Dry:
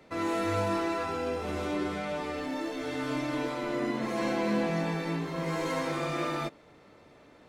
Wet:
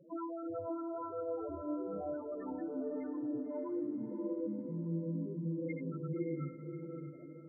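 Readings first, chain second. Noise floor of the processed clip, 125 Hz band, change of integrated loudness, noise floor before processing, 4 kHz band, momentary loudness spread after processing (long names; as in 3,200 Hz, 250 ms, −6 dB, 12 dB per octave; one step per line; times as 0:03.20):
−50 dBFS, −5.0 dB, −8.0 dB, −57 dBFS, below −40 dB, 4 LU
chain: time-frequency box erased 0:03.72–0:06.69, 520–1,300 Hz
downward compressor 10 to 1, threshold −37 dBFS, peak gain reduction 12.5 dB
flanger 1.6 Hz, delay 5.6 ms, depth 1.9 ms, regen +54%
spectral peaks only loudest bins 4
feedback delay with all-pass diffusion 594 ms, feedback 41%, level −6 dB
level +7 dB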